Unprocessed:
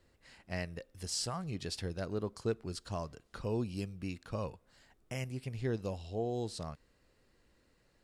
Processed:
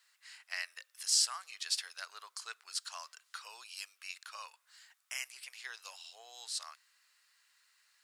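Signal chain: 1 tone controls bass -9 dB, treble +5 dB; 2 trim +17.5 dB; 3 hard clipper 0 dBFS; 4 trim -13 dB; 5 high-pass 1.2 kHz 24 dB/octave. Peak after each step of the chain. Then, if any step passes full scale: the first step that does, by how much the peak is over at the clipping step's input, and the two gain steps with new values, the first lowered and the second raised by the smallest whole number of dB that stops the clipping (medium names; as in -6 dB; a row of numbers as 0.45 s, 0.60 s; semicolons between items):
-20.0 dBFS, -2.5 dBFS, -2.5 dBFS, -15.5 dBFS, -15.5 dBFS; nothing clips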